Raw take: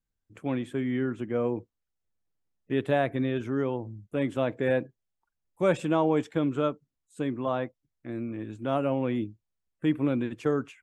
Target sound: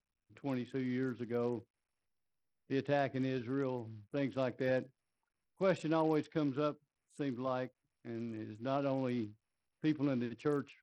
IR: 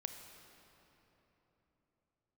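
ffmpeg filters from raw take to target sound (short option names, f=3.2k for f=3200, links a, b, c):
-af "acrusher=bits=6:mode=log:mix=0:aa=0.000001,volume=-8dB" -ar 44100 -c:a sbc -b:a 64k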